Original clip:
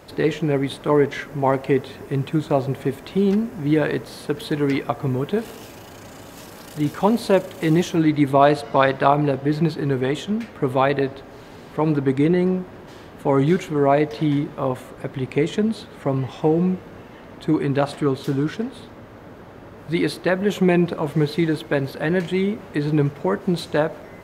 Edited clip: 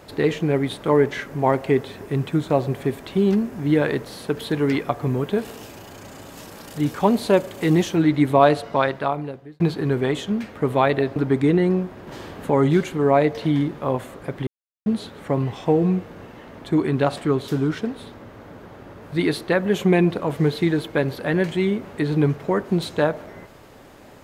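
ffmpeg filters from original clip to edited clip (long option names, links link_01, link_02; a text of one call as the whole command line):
ffmpeg -i in.wav -filter_complex "[0:a]asplit=7[link_01][link_02][link_03][link_04][link_05][link_06][link_07];[link_01]atrim=end=9.6,asetpts=PTS-STARTPTS,afade=type=out:start_time=8.44:duration=1.16[link_08];[link_02]atrim=start=9.6:end=11.162,asetpts=PTS-STARTPTS,afade=type=in:duration=0.004:curve=hsin[link_09];[link_03]atrim=start=11.918:end=12.832[link_10];[link_04]atrim=start=12.828:end=13.262,asetpts=PTS-STARTPTS,volume=4.5dB[link_11];[link_05]atrim=start=13.258:end=15.23,asetpts=PTS-STARTPTS,afade=type=out:start_time=1.968:duration=0.004:curve=hsin[link_12];[link_06]atrim=start=15.23:end=15.62,asetpts=PTS-STARTPTS,volume=0[link_13];[link_07]atrim=start=15.62,asetpts=PTS-STARTPTS,afade=type=in:duration=0.004:curve=hsin[link_14];[link_08][link_09]concat=n=2:v=0:a=1[link_15];[link_15][link_10]acrossfade=duration=0.004:curve1=hsin:curve2=hsin[link_16];[link_16][link_11]acrossfade=duration=0.004:curve1=hsin:curve2=hsin[link_17];[link_12][link_13][link_14]concat=n=3:v=0:a=1[link_18];[link_17][link_18]acrossfade=duration=0.004:curve1=hsin:curve2=hsin" out.wav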